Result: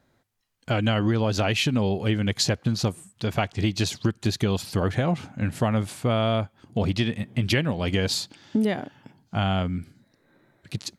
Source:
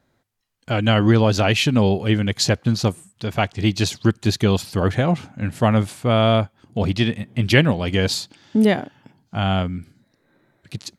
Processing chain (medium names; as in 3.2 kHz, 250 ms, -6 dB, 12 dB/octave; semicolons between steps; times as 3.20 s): compression 5:1, threshold -20 dBFS, peak gain reduction 10.5 dB